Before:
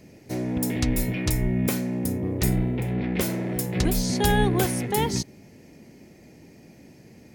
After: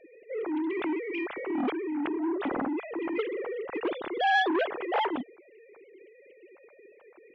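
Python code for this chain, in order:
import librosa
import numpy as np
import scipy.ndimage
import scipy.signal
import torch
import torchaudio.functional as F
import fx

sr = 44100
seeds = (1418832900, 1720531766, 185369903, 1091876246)

y = fx.sine_speech(x, sr)
y = fx.transformer_sat(y, sr, knee_hz=950.0)
y = y * 10.0 ** (-4.5 / 20.0)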